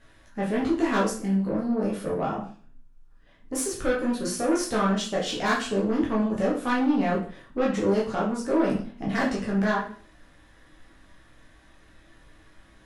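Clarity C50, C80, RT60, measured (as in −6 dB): 6.5 dB, 11.0 dB, 0.45 s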